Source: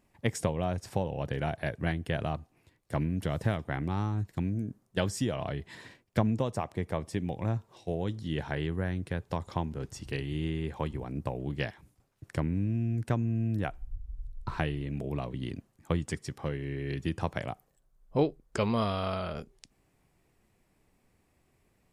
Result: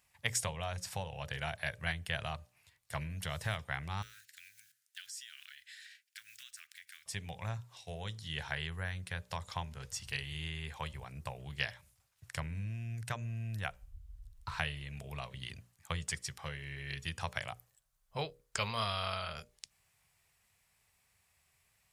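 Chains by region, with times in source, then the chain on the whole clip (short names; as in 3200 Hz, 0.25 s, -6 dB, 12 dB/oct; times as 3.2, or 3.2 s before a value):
4.02–7.06 block floating point 7-bit + elliptic high-pass 1500 Hz + compressor 2.5:1, threshold -53 dBFS
whole clip: HPF 73 Hz; passive tone stack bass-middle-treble 10-0-10; notches 60/120/180/240/300/360/420/480/540/600 Hz; gain +6 dB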